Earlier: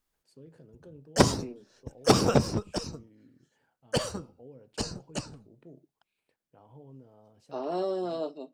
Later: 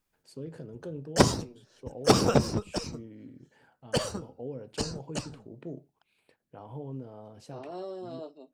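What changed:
first voice +11.0 dB; second voice -8.5 dB

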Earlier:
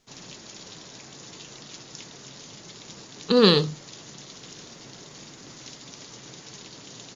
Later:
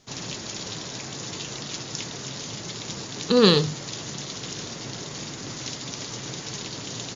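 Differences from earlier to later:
background +9.0 dB; master: add peaking EQ 100 Hz +6 dB 0.72 oct

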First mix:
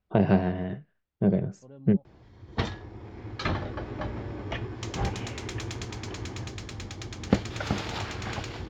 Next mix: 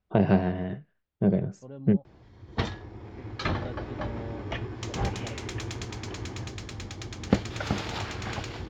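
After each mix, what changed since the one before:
second voice +5.5 dB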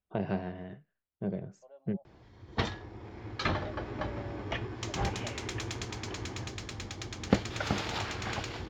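first voice -8.5 dB; second voice: add ladder high-pass 590 Hz, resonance 75%; master: add bass shelf 360 Hz -4 dB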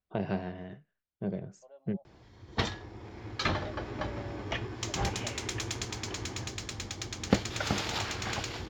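master: add treble shelf 4.9 kHz +9 dB

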